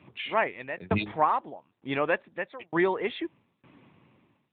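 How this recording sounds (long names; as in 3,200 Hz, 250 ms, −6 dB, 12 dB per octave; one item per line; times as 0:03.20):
tremolo saw down 1.1 Hz, depth 100%
AMR narrowband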